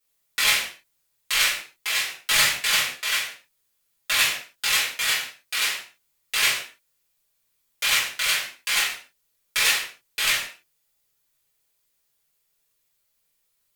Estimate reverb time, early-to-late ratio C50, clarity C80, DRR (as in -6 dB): no single decay rate, 5.5 dB, 9.5 dB, -8.0 dB